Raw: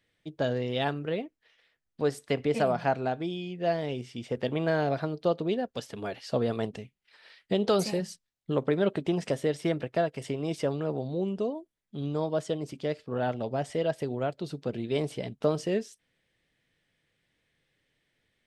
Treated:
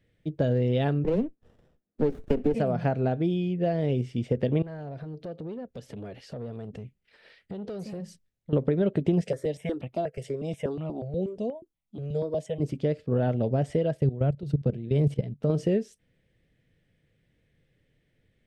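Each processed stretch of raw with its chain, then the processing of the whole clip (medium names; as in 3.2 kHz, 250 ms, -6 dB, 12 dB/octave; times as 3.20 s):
1.04–2.54 s: steep high-pass 180 Hz 72 dB/octave + bass shelf 250 Hz +9.5 dB + sliding maximum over 17 samples
4.62–8.53 s: compression 3:1, threshold -43 dBFS + transformer saturation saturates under 730 Hz
9.21–12.60 s: bass shelf 340 Hz -9 dB + stepped phaser 8.3 Hz 290–1600 Hz
13.97–15.50 s: peaking EQ 140 Hz +9.5 dB 0.28 oct + level held to a coarse grid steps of 15 dB
whole clip: graphic EQ 500/1000/4000 Hz +6/-6/-3 dB; compression, threshold -25 dBFS; tone controls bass +12 dB, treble -5 dB; trim +1 dB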